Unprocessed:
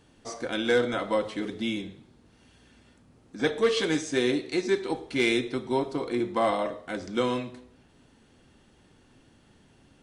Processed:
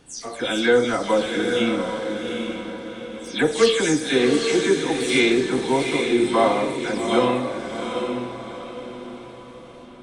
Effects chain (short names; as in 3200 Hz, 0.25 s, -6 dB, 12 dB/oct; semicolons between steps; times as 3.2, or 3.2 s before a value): spectral delay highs early, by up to 0.191 s; diffused feedback echo 0.792 s, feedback 43%, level -5 dB; dynamic EQ 8700 Hz, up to +6 dB, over -57 dBFS, Q 1.3; gain +6.5 dB